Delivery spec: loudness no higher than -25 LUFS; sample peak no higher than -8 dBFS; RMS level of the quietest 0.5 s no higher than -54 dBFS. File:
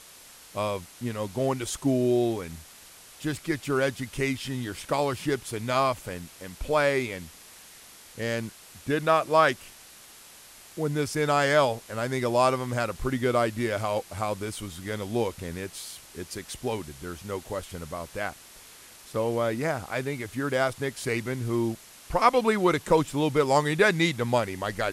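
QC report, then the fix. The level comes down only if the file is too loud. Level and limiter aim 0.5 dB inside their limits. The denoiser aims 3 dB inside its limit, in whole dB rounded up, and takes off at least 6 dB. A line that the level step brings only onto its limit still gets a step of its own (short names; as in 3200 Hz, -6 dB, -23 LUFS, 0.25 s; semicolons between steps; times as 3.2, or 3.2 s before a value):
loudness -27.0 LUFS: OK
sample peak -6.5 dBFS: fail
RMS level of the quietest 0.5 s -50 dBFS: fail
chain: denoiser 7 dB, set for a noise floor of -50 dBFS; limiter -8.5 dBFS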